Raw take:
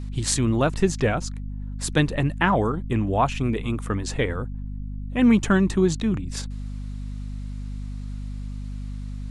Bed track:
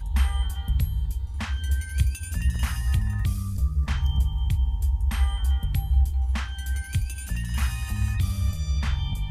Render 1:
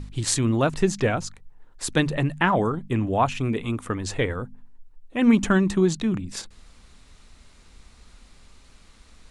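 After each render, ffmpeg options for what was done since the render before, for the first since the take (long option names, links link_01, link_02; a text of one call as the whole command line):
ffmpeg -i in.wav -af "bandreject=frequency=50:width_type=h:width=4,bandreject=frequency=100:width_type=h:width=4,bandreject=frequency=150:width_type=h:width=4,bandreject=frequency=200:width_type=h:width=4,bandreject=frequency=250:width_type=h:width=4" out.wav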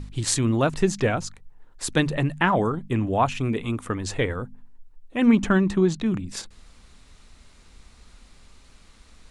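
ffmpeg -i in.wav -filter_complex "[0:a]asettb=1/sr,asplit=3[link_01][link_02][link_03];[link_01]atrim=end=5.264[link_04];[link_02]atrim=start=5.26:end=6.06,asetpts=PTS-STARTPTS,afade=type=in:duration=0.004:curve=qsin,afade=type=out:start_time=0.796:duration=0.004:curve=qsin,highshelf=frequency=6500:gain=-11[link_05];[link_03]atrim=start=6.056[link_06];[link_04][link_05]acrossfade=duration=0.004:curve1=hsin:curve2=qsin[link_07];[link_07][link_06]acrossfade=duration=0.004:curve1=qsin:curve2=hsin" out.wav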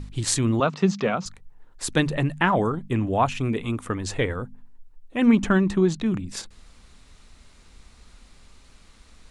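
ffmpeg -i in.wav -filter_complex "[0:a]asettb=1/sr,asplit=3[link_01][link_02][link_03];[link_01]atrim=end=0.604[link_04];[link_02]atrim=start=0.6:end=1.26,asetpts=PTS-STARTPTS,afade=type=in:duration=0.004:curve=qsin,afade=type=out:start_time=0.656:duration=0.004:curve=qsin,highpass=frequency=160:width=0.5412,highpass=frequency=160:width=1.3066,equalizer=frequency=190:width_type=q:width=4:gain=6,equalizer=frequency=310:width_type=q:width=4:gain=-9,equalizer=frequency=1200:width_type=q:width=4:gain=6,equalizer=frequency=1700:width_type=q:width=4:gain=-5,lowpass=frequency=5700:width=0.5412,lowpass=frequency=5700:width=1.3066[link_05];[link_03]atrim=start=1.256[link_06];[link_04][link_05]acrossfade=duration=0.004:curve1=hsin:curve2=qsin[link_07];[link_07][link_06]acrossfade=duration=0.004:curve1=qsin:curve2=hsin" out.wav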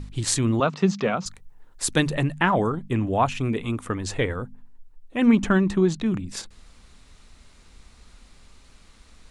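ffmpeg -i in.wav -filter_complex "[0:a]asettb=1/sr,asplit=3[link_01][link_02][link_03];[link_01]atrim=end=1.264[link_04];[link_02]atrim=start=1.26:end=2.25,asetpts=PTS-STARTPTS,afade=type=in:duration=0.004:curve=qsin,afade=type=out:start_time=0.986:duration=0.004:curve=qsin,highshelf=frequency=5400:gain=6.5[link_05];[link_03]atrim=start=2.246[link_06];[link_04][link_05]acrossfade=duration=0.004:curve1=hsin:curve2=qsin[link_07];[link_07][link_06]acrossfade=duration=0.004:curve1=qsin:curve2=hsin" out.wav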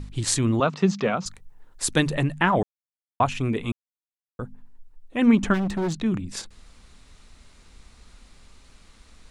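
ffmpeg -i in.wav -filter_complex "[0:a]asplit=3[link_01][link_02][link_03];[link_01]afade=type=out:start_time=5.53:duration=0.02[link_04];[link_02]asoftclip=type=hard:threshold=-22.5dB,afade=type=in:start_time=5.53:duration=0.02,afade=type=out:start_time=5.95:duration=0.02[link_05];[link_03]afade=type=in:start_time=5.95:duration=0.02[link_06];[link_04][link_05][link_06]amix=inputs=3:normalize=0,asplit=5[link_07][link_08][link_09][link_10][link_11];[link_07]atrim=end=2.63,asetpts=PTS-STARTPTS,afade=type=out:start_time=2.626:duration=0.004:curve=hsin[link_12];[link_08]atrim=start=2.63:end=3.2,asetpts=PTS-STARTPTS,volume=0[link_13];[link_09]atrim=start=3.2:end=3.72,asetpts=PTS-STARTPTS,afade=type=in:duration=0.004:curve=hsin,afade=type=out:start_time=0.516:duration=0.004:curve=hsin[link_14];[link_10]atrim=start=3.72:end=4.39,asetpts=PTS-STARTPTS,volume=0[link_15];[link_11]atrim=start=4.39,asetpts=PTS-STARTPTS,afade=type=in:duration=0.004:curve=hsin[link_16];[link_12][link_13][link_14][link_15][link_16]concat=n=5:v=0:a=1" out.wav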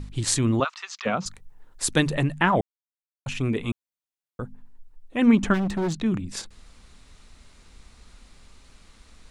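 ffmpeg -i in.wav -filter_complex "[0:a]asplit=3[link_01][link_02][link_03];[link_01]afade=type=out:start_time=0.63:duration=0.02[link_04];[link_02]highpass=frequency=1100:width=0.5412,highpass=frequency=1100:width=1.3066,afade=type=in:start_time=0.63:duration=0.02,afade=type=out:start_time=1.05:duration=0.02[link_05];[link_03]afade=type=in:start_time=1.05:duration=0.02[link_06];[link_04][link_05][link_06]amix=inputs=3:normalize=0,asplit=3[link_07][link_08][link_09];[link_07]atrim=end=2.61,asetpts=PTS-STARTPTS,afade=type=out:start_time=2.606:duration=0.004:curve=hsin[link_10];[link_08]atrim=start=2.61:end=3.26,asetpts=PTS-STARTPTS,volume=0[link_11];[link_09]atrim=start=3.26,asetpts=PTS-STARTPTS,afade=type=in:duration=0.004:curve=hsin[link_12];[link_10][link_11][link_12]concat=n=3:v=0:a=1" out.wav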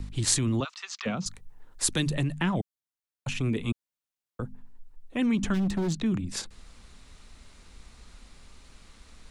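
ffmpeg -i in.wav -filter_complex "[0:a]acrossover=split=310|3000[link_01][link_02][link_03];[link_02]acompressor=threshold=-37dB:ratio=3[link_04];[link_01][link_04][link_03]amix=inputs=3:normalize=0,acrossover=split=500|1800[link_05][link_06][link_07];[link_05]alimiter=limit=-21dB:level=0:latency=1[link_08];[link_08][link_06][link_07]amix=inputs=3:normalize=0" out.wav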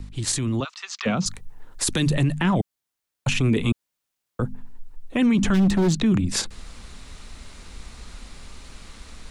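ffmpeg -i in.wav -af "dynaudnorm=framelen=310:gausssize=3:maxgain=10dB,alimiter=limit=-13dB:level=0:latency=1:release=13" out.wav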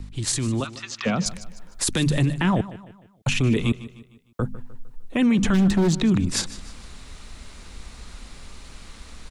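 ffmpeg -i in.wav -af "aecho=1:1:152|304|456|608:0.15|0.0643|0.0277|0.0119" out.wav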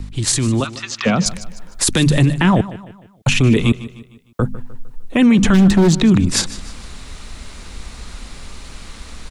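ffmpeg -i in.wav -af "volume=7.5dB" out.wav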